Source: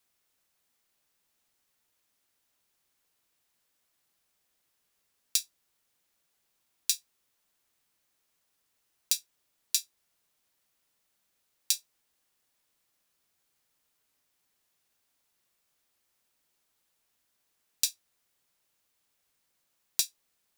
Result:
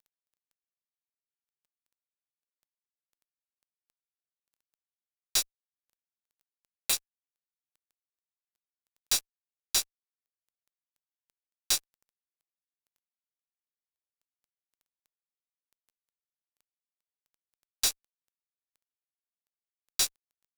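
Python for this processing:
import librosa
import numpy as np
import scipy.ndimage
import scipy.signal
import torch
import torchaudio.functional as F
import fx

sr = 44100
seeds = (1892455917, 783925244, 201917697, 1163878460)

y = fx.fixed_phaser(x, sr, hz=1100.0, stages=8, at=(5.42, 6.93))
y = fx.dmg_crackle(y, sr, seeds[0], per_s=25.0, level_db=-52.0)
y = fx.fuzz(y, sr, gain_db=39.0, gate_db=-48.0)
y = F.gain(torch.from_numpy(y), -8.0).numpy()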